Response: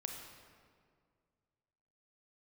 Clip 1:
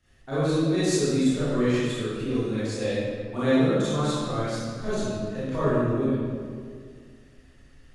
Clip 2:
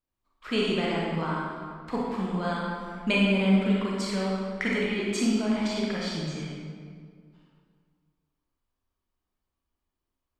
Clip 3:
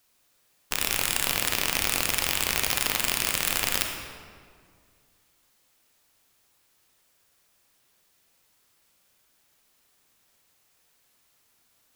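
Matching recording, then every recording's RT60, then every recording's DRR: 3; 2.0, 2.0, 2.0 s; -14.0, -5.0, 2.5 dB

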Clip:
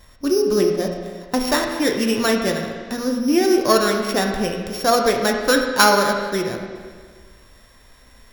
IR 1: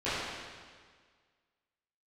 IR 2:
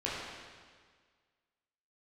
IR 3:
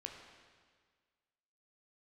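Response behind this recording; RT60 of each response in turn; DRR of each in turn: 3; 1.7, 1.7, 1.7 s; -16.0, -7.5, 2.0 dB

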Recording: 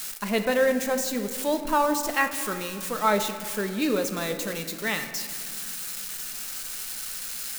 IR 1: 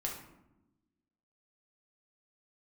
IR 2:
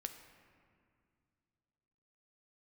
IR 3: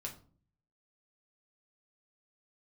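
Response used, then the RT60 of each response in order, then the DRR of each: 2; 0.95, 2.3, 0.45 s; -1.5, 6.5, -1.0 dB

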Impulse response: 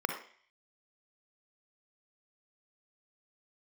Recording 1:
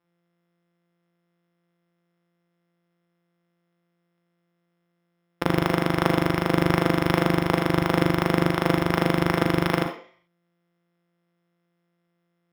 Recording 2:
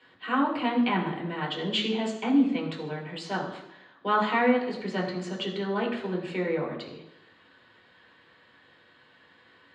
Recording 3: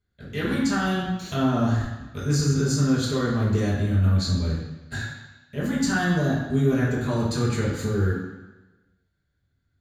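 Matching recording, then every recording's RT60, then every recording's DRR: 1; 0.50, 0.85, 1.1 s; 4.5, -2.0, -7.5 dB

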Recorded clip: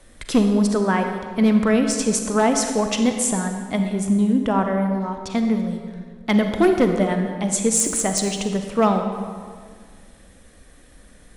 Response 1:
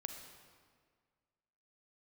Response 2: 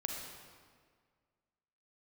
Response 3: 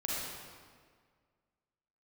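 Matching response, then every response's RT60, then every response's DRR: 1; 1.8, 1.8, 1.8 s; 5.0, 1.0, -6.0 dB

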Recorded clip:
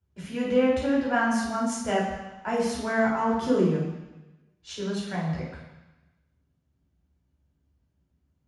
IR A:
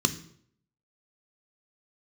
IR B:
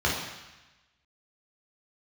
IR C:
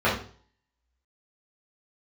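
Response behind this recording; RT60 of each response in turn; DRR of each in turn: B; 0.65, 1.0, 0.45 s; 9.0, -5.0, -9.0 dB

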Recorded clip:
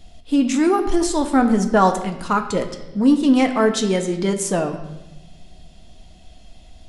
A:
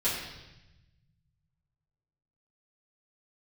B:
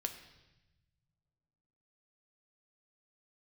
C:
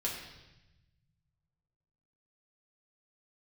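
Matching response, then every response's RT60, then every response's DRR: B; 0.95, 1.0, 1.0 s; -11.0, 5.5, -4.0 dB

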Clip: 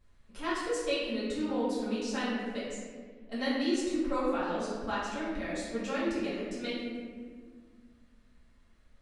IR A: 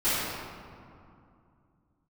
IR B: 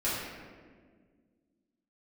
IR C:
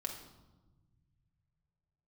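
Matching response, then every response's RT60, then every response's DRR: B; 2.5, 1.7, 1.1 s; -19.0, -11.0, 0.5 dB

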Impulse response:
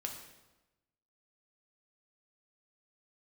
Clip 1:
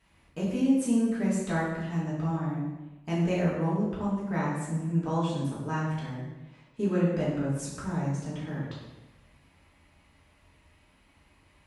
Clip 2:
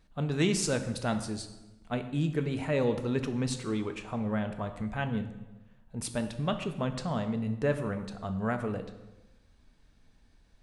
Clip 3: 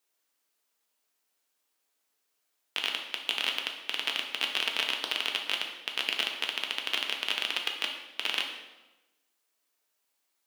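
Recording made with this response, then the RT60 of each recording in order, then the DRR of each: 3; 1.1, 1.1, 1.1 s; -8.0, 7.0, 1.5 dB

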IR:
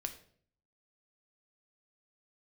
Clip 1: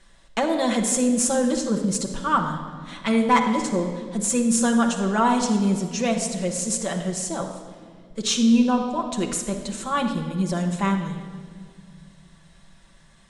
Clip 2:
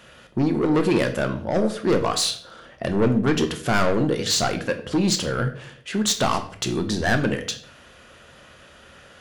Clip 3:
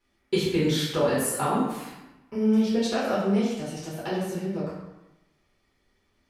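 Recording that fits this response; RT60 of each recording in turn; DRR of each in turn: 2; 1.9, 0.55, 0.95 s; 0.5, 6.0, -9.0 dB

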